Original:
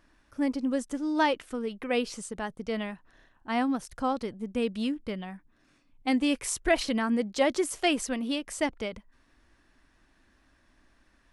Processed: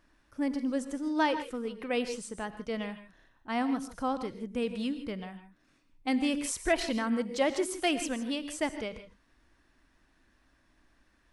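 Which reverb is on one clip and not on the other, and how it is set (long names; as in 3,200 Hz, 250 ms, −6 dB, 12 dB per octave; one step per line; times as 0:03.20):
reverb whose tail is shaped and stops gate 180 ms rising, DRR 10.5 dB
level −3 dB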